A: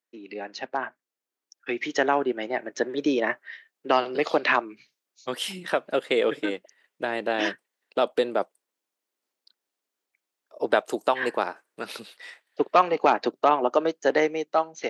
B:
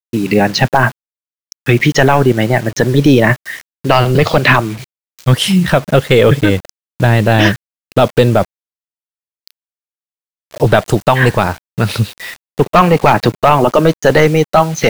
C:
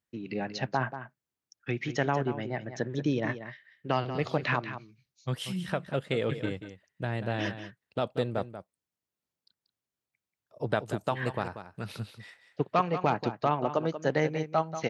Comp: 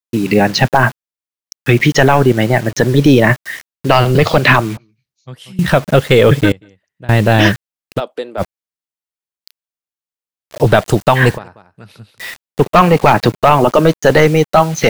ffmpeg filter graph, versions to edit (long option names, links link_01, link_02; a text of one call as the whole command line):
ffmpeg -i take0.wav -i take1.wav -i take2.wav -filter_complex "[2:a]asplit=3[link_01][link_02][link_03];[1:a]asplit=5[link_04][link_05][link_06][link_07][link_08];[link_04]atrim=end=4.772[link_09];[link_01]atrim=start=4.768:end=5.592[link_10];[link_05]atrim=start=5.588:end=6.522[link_11];[link_02]atrim=start=6.518:end=7.092[link_12];[link_06]atrim=start=7.088:end=8.01[link_13];[0:a]atrim=start=7.95:end=8.43[link_14];[link_07]atrim=start=8.37:end=11.39[link_15];[link_03]atrim=start=11.33:end=12.21[link_16];[link_08]atrim=start=12.15[link_17];[link_09][link_10]acrossfade=duration=0.004:curve1=hsin:curve2=hsin[link_18];[link_18][link_11]acrossfade=duration=0.004:curve1=hsin:curve2=hsin[link_19];[link_19][link_12]acrossfade=duration=0.004:curve1=hsin:curve2=hsin[link_20];[link_20][link_13]acrossfade=duration=0.004:curve1=hsin:curve2=hsin[link_21];[link_21][link_14]acrossfade=duration=0.06:curve1=tri:curve2=tri[link_22];[link_22][link_15]acrossfade=duration=0.06:curve1=tri:curve2=tri[link_23];[link_23][link_16]acrossfade=duration=0.06:curve1=tri:curve2=tri[link_24];[link_24][link_17]acrossfade=duration=0.06:curve1=tri:curve2=tri" out.wav